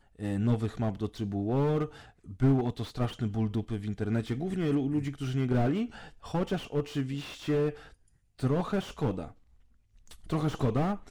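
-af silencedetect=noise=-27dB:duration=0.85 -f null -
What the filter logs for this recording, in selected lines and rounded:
silence_start: 9.21
silence_end: 10.32 | silence_duration: 1.12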